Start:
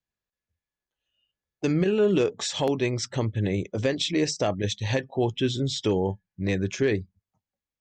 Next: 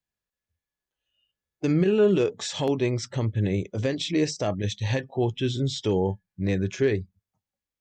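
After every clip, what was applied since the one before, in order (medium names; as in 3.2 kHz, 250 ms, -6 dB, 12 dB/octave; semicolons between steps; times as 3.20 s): harmonic-percussive split percussive -6 dB; trim +2 dB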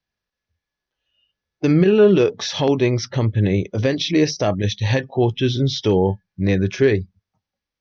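Chebyshev low-pass 6 kHz, order 6; trim +8 dB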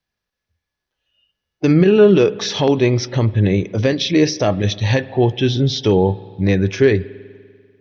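spring tank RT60 2 s, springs 49 ms, chirp 35 ms, DRR 18 dB; trim +2.5 dB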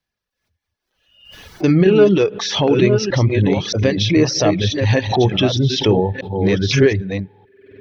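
chunks repeated in reverse 621 ms, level -5.5 dB; reverb removal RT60 0.87 s; swell ahead of each attack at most 83 dB/s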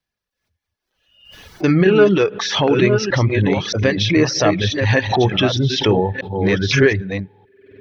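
dynamic bell 1.5 kHz, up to +8 dB, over -36 dBFS, Q 1; trim -1.5 dB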